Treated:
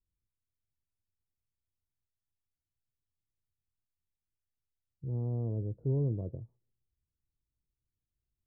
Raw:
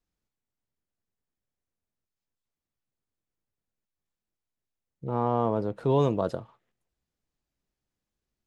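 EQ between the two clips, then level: ladder low-pass 460 Hz, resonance 25%; resonant low shelf 150 Hz +10 dB, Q 1.5; -4.0 dB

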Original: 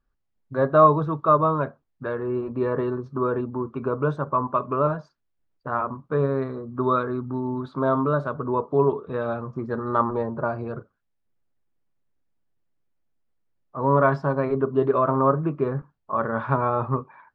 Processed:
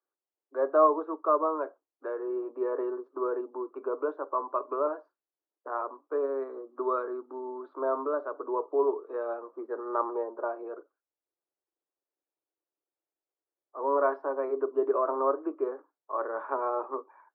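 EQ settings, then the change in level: steep high-pass 300 Hz 72 dB/oct; LPF 1200 Hz 12 dB/oct; -5.0 dB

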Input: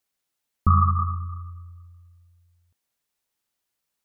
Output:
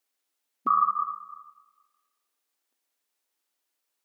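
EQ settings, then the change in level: brick-wall FIR high-pass 230 Hz; 0.0 dB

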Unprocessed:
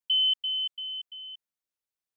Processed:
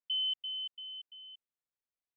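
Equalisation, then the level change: air absorption 230 m; -4.5 dB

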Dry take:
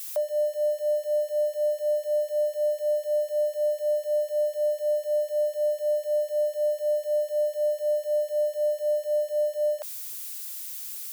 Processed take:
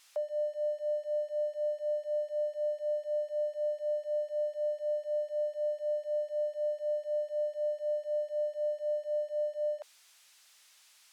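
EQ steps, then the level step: air absorption 55 m; high shelf 5200 Hz -10.5 dB; -7.0 dB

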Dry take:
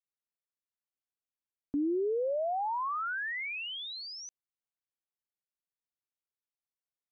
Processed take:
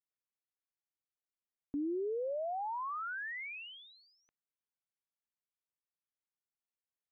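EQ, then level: LPF 2700 Hz 24 dB/oct; -5.5 dB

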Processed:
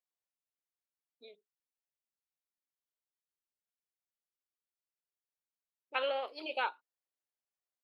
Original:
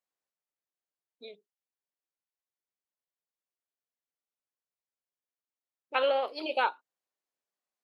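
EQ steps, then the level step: dynamic EQ 2400 Hz, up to +5 dB, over -43 dBFS, Q 0.86; bell 190 Hz -7 dB 0.38 oct; -8.0 dB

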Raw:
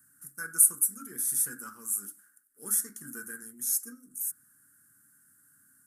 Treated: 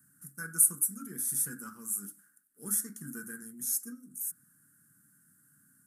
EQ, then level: bell 170 Hz +12 dB 1.2 oct; -3.0 dB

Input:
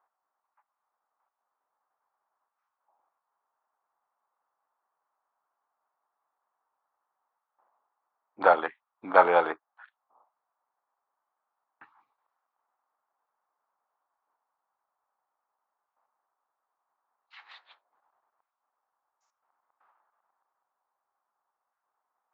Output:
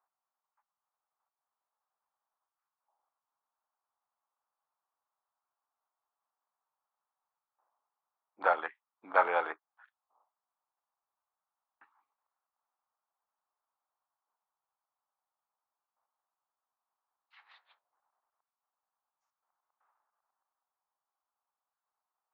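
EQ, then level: dynamic EQ 2100 Hz, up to +6 dB, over -37 dBFS, Q 0.79; HPF 490 Hz 6 dB/oct; high shelf 3900 Hz -8.5 dB; -7.5 dB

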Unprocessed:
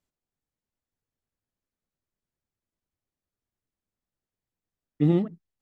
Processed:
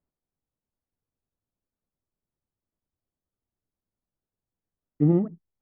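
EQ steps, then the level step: LPF 1300 Hz 12 dB/oct; air absorption 340 m; +1.5 dB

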